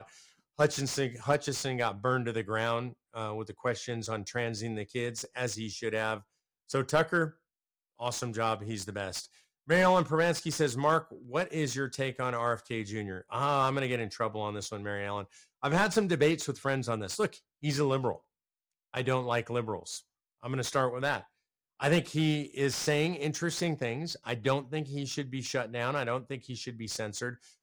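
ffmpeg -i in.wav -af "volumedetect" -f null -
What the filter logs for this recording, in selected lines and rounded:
mean_volume: -32.1 dB
max_volume: -10.9 dB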